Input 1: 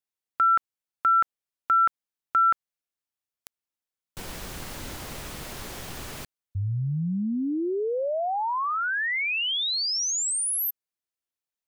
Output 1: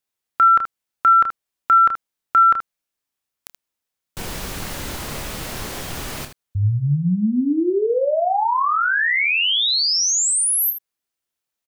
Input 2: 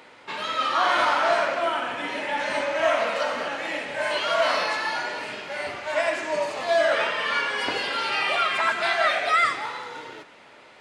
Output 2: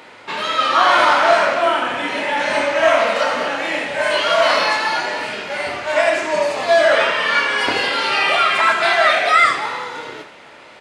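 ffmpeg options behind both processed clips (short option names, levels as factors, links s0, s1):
-af "aecho=1:1:28|78:0.422|0.316,volume=2.24"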